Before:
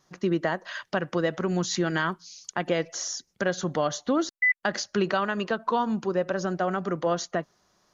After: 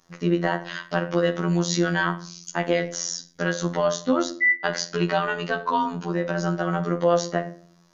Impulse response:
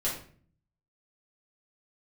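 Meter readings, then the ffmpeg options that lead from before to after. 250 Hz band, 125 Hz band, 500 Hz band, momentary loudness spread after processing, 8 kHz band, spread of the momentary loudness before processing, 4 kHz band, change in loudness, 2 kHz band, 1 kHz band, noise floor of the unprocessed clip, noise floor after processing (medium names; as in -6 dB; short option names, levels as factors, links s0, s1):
+3.0 dB, +5.5 dB, +3.0 dB, 7 LU, no reading, 7 LU, +3.0 dB, +3.0 dB, +3.5 dB, +3.0 dB, -71 dBFS, -56 dBFS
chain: -filter_complex "[0:a]asplit=2[s0][s1];[1:a]atrim=start_sample=2205[s2];[s1][s2]afir=irnorm=-1:irlink=0,volume=0.282[s3];[s0][s3]amix=inputs=2:normalize=0,afftfilt=real='hypot(re,im)*cos(PI*b)':imag='0':win_size=2048:overlap=0.75,volume=1.5"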